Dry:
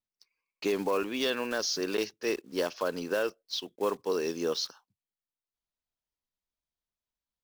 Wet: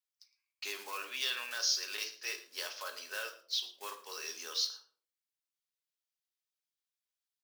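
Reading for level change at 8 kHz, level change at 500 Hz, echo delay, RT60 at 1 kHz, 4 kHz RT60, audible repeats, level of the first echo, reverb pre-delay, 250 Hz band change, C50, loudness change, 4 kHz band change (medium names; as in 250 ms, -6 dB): +1.0 dB, -20.5 dB, 112 ms, 0.45 s, 0.35 s, 1, -17.5 dB, 3 ms, -28.0 dB, 11.0 dB, -5.0 dB, +0.5 dB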